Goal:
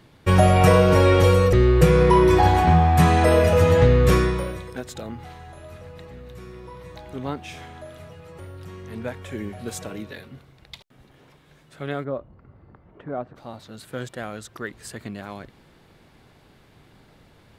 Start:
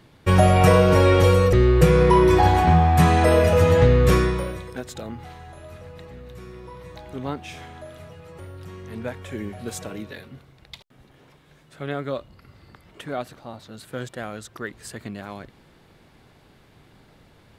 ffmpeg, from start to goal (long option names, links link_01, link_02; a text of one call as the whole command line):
ffmpeg -i in.wav -filter_complex "[0:a]asplit=3[link_01][link_02][link_03];[link_01]afade=type=out:start_time=12.03:duration=0.02[link_04];[link_02]lowpass=1100,afade=type=in:start_time=12.03:duration=0.02,afade=type=out:start_time=13.35:duration=0.02[link_05];[link_03]afade=type=in:start_time=13.35:duration=0.02[link_06];[link_04][link_05][link_06]amix=inputs=3:normalize=0" out.wav